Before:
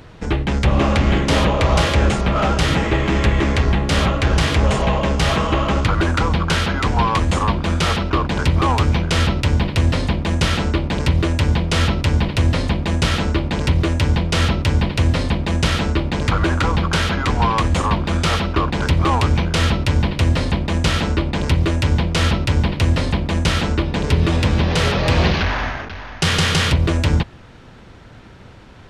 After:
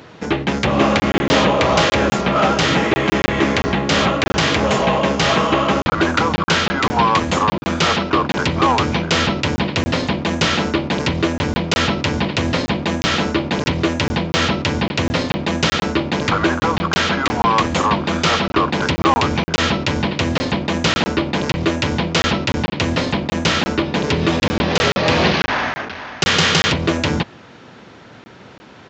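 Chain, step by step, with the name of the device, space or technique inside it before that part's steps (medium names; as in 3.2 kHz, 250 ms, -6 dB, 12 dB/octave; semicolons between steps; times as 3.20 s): call with lost packets (high-pass 180 Hz 12 dB/octave; resampled via 16 kHz; lost packets of 20 ms random); trim +4 dB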